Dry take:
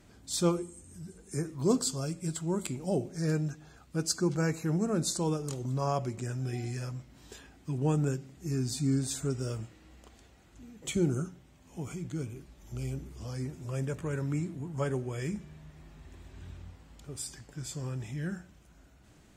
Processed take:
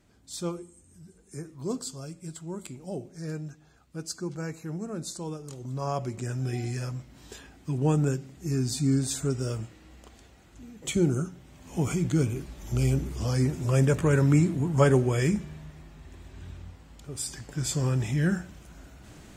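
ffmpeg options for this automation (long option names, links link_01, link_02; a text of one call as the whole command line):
ffmpeg -i in.wav -af "volume=18.5dB,afade=type=in:start_time=5.49:duration=0.94:silence=0.334965,afade=type=in:start_time=11.3:duration=0.49:silence=0.421697,afade=type=out:start_time=15.03:duration=0.86:silence=0.398107,afade=type=in:start_time=17.1:duration=0.62:silence=0.446684" out.wav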